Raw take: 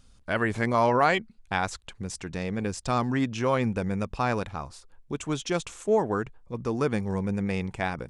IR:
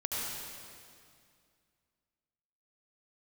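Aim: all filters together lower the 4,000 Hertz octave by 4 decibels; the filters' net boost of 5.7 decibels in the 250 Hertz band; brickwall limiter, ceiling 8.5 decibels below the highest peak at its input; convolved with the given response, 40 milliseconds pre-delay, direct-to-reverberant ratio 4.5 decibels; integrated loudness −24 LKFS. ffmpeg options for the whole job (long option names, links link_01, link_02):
-filter_complex "[0:a]equalizer=frequency=250:width_type=o:gain=7,equalizer=frequency=4000:width_type=o:gain=-5.5,alimiter=limit=-18dB:level=0:latency=1,asplit=2[link_01][link_02];[1:a]atrim=start_sample=2205,adelay=40[link_03];[link_02][link_03]afir=irnorm=-1:irlink=0,volume=-10dB[link_04];[link_01][link_04]amix=inputs=2:normalize=0,volume=4dB"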